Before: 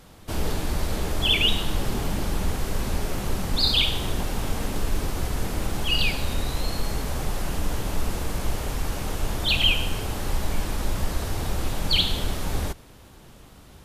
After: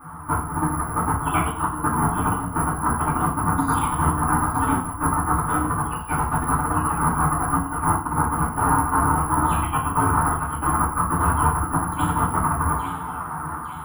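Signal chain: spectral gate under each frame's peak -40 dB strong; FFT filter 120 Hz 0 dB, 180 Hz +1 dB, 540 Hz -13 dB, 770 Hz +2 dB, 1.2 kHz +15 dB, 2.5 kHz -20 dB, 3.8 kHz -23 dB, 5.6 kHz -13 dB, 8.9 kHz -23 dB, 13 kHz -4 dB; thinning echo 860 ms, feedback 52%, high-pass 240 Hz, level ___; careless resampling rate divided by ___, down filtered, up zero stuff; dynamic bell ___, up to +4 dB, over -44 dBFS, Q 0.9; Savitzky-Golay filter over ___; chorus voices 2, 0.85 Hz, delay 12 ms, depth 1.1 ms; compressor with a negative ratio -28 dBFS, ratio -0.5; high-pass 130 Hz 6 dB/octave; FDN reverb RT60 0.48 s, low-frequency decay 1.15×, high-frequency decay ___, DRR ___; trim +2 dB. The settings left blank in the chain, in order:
-10.5 dB, 4×, 340 Hz, 25 samples, 0.95×, -7.5 dB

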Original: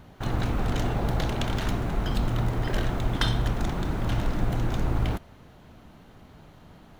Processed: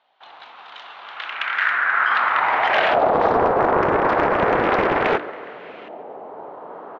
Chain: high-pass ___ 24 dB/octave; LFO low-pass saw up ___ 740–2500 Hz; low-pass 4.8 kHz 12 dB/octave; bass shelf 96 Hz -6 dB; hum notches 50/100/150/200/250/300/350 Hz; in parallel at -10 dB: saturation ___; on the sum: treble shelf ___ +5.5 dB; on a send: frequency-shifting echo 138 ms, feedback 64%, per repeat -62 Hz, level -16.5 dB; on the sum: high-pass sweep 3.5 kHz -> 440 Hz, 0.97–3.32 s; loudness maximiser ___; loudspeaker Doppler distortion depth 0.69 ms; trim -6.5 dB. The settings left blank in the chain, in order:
67 Hz, 0.34 Hz, -23 dBFS, 3.3 kHz, +16.5 dB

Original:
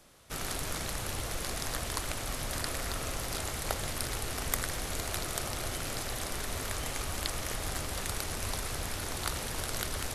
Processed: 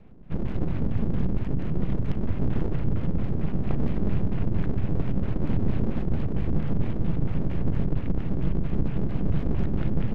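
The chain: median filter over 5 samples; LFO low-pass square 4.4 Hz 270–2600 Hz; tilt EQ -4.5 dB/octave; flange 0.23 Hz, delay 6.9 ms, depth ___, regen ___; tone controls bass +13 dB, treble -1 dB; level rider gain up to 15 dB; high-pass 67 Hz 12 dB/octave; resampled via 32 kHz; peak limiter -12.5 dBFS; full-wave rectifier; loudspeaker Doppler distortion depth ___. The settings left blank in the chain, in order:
1.6 ms, +85%, 0.68 ms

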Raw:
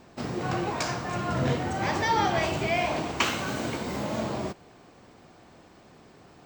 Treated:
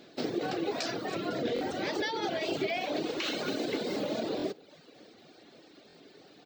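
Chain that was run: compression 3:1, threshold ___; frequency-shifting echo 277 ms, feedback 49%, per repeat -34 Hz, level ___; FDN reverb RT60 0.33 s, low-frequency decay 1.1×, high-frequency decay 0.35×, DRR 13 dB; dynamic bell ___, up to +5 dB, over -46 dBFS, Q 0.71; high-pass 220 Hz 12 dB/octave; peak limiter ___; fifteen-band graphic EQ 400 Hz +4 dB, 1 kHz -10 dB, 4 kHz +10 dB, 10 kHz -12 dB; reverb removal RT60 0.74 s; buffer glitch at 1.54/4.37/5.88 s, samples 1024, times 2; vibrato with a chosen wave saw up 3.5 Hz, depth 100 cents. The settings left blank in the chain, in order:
-30 dBFS, -16.5 dB, 440 Hz, -21 dBFS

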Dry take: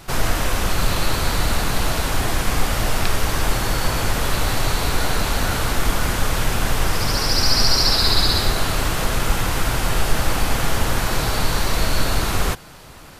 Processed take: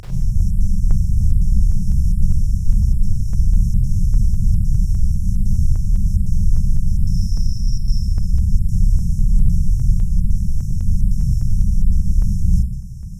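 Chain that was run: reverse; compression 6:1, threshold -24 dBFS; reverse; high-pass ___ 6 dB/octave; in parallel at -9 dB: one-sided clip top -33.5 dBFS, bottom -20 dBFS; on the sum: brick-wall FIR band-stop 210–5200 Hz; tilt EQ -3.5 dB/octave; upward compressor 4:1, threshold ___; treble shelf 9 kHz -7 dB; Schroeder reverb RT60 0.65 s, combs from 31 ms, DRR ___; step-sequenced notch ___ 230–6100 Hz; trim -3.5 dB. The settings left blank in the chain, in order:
59 Hz, -31 dBFS, -8.5 dB, 9.9 Hz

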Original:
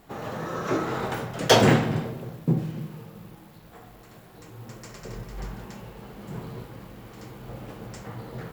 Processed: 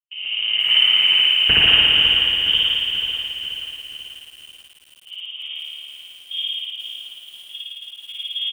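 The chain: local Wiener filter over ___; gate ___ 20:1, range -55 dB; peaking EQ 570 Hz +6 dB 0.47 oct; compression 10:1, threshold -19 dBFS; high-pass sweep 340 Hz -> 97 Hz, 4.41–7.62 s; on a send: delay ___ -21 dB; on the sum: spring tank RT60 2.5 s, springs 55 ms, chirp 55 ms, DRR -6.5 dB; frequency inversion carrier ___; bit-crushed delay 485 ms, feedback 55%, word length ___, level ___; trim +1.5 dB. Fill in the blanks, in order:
25 samples, -37 dBFS, 918 ms, 3.4 kHz, 7-bit, -9 dB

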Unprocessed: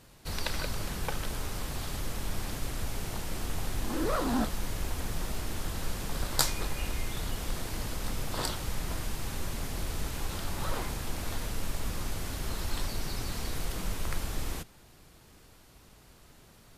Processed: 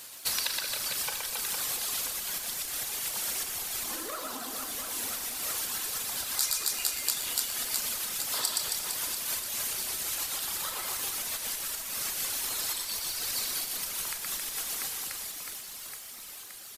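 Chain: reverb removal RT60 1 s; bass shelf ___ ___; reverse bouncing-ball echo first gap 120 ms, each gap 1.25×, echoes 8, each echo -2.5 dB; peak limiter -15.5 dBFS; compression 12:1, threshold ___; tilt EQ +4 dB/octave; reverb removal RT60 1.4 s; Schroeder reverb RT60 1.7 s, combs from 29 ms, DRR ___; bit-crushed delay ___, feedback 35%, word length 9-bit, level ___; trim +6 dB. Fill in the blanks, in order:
240 Hz, -6 dB, -38 dBFS, 5.5 dB, 123 ms, -12 dB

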